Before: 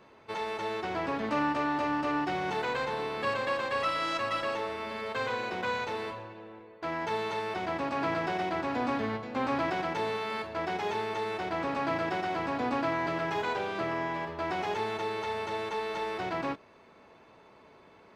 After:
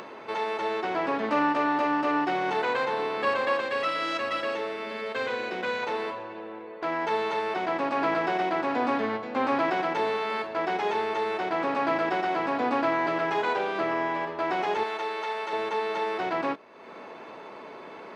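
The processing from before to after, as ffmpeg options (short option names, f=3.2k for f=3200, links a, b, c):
-filter_complex "[0:a]asettb=1/sr,asplit=3[a][b][c];[a]atrim=end=3.604[d];[b]atrim=start=3.6:end=5.83,asetpts=PTS-STARTPTS,afade=t=in:d=0.004:c=qsin,afade=t=out:st=2.226:d=0.004:c=qsin,equalizer=f=950:w=1.5:g=-7[e];[c]atrim=start=5.826[f];[d][e]acrossfade=d=0.004:c1=hsin:c2=qsin[g];[g][f]acrossfade=d=0.004:c1=qsin:c2=hsin,asettb=1/sr,asplit=3[h][i][j];[h]atrim=end=14.834[k];[i]atrim=start=14.83:end=15.53,asetpts=PTS-STARTPTS,afade=t=in:d=0.004:c=qsin,afade=t=out:st=0.696:d=0.004:c=qsin,highpass=f=640:p=1[l];[j]atrim=start=15.526[m];[k][l]acrossfade=d=0.004:c1=hsin:c2=qsin[n];[n][m]acrossfade=d=0.004:c1=qsin:c2=hsin,highpass=250,highshelf=f=5.1k:g=-10,acompressor=mode=upward:threshold=-38dB:ratio=2.5,volume=5.5dB"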